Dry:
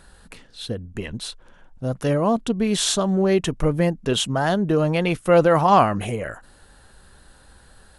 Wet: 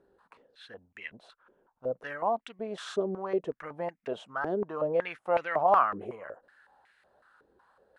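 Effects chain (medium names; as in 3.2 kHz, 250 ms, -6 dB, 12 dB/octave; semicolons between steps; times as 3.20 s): step-sequenced band-pass 5.4 Hz 400–2100 Hz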